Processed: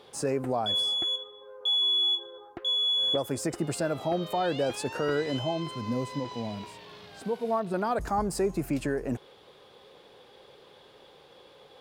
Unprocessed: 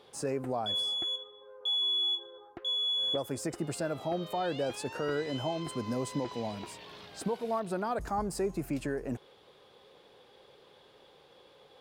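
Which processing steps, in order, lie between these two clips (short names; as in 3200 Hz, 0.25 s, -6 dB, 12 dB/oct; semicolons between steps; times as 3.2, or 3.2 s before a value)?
5.39–7.74 harmonic-percussive split percussive -13 dB; gain +4.5 dB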